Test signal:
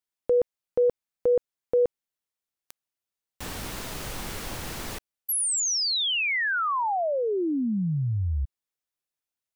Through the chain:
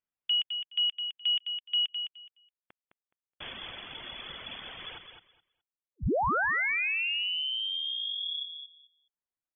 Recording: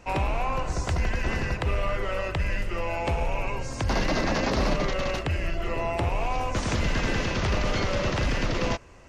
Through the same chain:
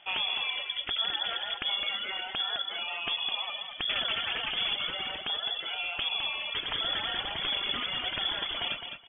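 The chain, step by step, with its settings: reverb removal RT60 1.9 s; on a send: feedback delay 210 ms, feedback 18%, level -7.5 dB; on the sum: frequency inversion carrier 3.4 kHz; distance through air 310 m

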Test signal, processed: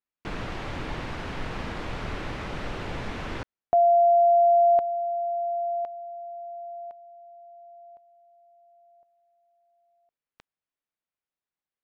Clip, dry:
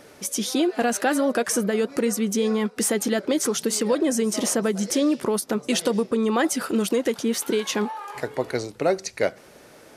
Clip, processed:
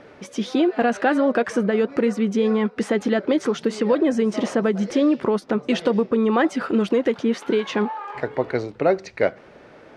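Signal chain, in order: low-pass 2.6 kHz 12 dB/octave; trim +3 dB

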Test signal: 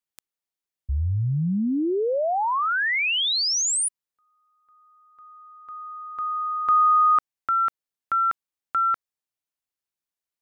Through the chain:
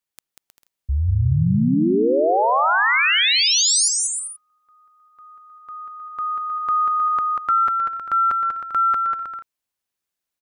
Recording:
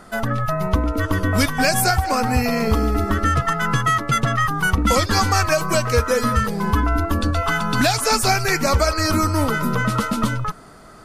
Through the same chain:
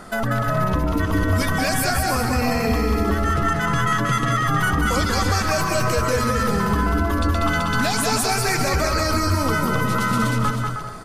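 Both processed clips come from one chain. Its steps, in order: peak limiter -18 dBFS; on a send: bouncing-ball echo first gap 190 ms, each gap 0.65×, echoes 5; on the sum: trim +4 dB

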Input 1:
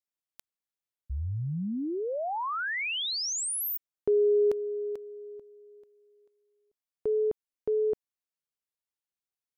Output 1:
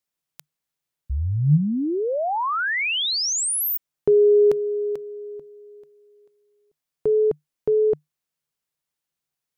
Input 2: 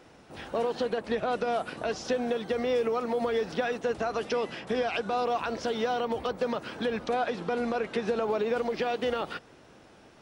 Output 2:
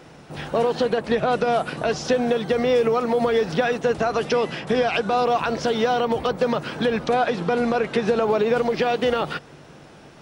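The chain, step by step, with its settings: peaking EQ 150 Hz +11.5 dB 0.25 oct; trim +8 dB

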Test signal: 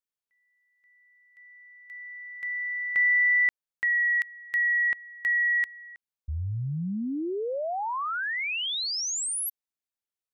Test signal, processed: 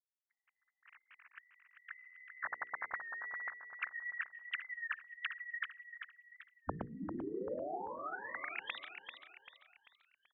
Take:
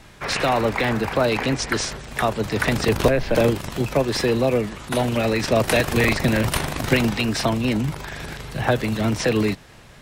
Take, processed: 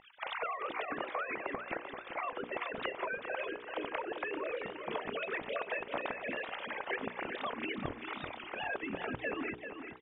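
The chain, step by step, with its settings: formants replaced by sine waves; spectral gate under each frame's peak -10 dB weak; tilt shelf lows +6.5 dB, about 710 Hz; hum notches 60/120/180/240/300/360/420/480 Hz; compression 5:1, threshold -48 dBFS; distance through air 50 m; feedback delay 391 ms, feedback 42%, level -8 dB; warped record 33 1/3 rpm, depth 100 cents; trim +11 dB

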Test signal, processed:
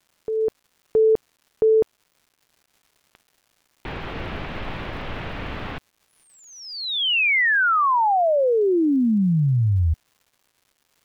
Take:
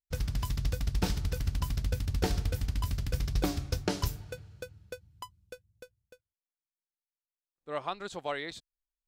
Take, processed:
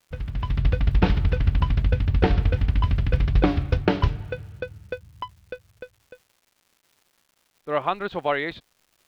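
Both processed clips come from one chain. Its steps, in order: low-pass 3.1 kHz 24 dB/octave; level rider gain up to 11 dB; crackle 360 per s -49 dBFS

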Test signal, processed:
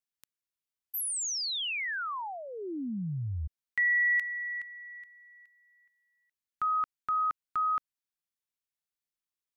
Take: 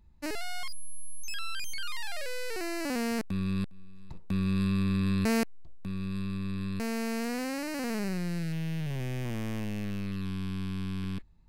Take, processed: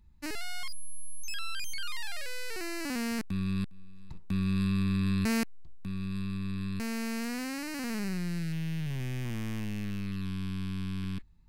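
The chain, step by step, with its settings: peaking EQ 570 Hz -9 dB 1.1 oct

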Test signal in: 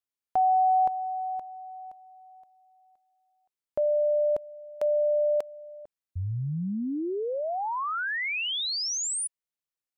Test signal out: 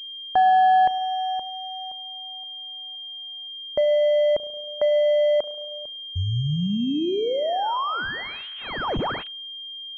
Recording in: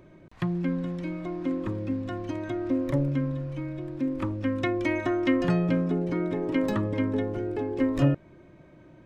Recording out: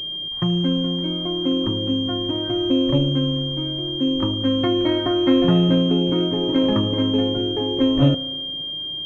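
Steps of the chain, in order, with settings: spring tank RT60 1.4 s, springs 34 ms, chirp 45 ms, DRR 13.5 dB; class-D stage that switches slowly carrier 3.2 kHz; trim +6 dB

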